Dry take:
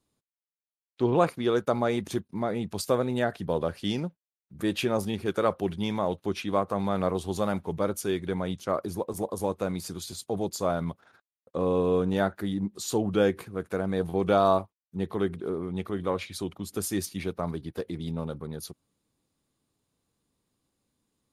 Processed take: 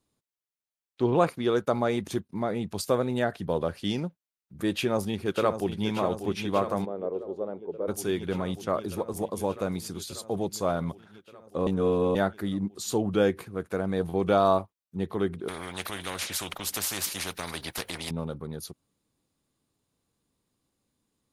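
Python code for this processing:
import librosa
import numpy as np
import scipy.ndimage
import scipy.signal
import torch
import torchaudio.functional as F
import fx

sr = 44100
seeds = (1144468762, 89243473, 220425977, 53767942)

y = fx.echo_throw(x, sr, start_s=4.73, length_s=1.14, ms=590, feedback_pct=80, wet_db=-9.0)
y = fx.bandpass_q(y, sr, hz=440.0, q=2.6, at=(6.84, 7.87), fade=0.02)
y = fx.spectral_comp(y, sr, ratio=4.0, at=(15.48, 18.11))
y = fx.edit(y, sr, fx.reverse_span(start_s=11.67, length_s=0.48), tone=tone)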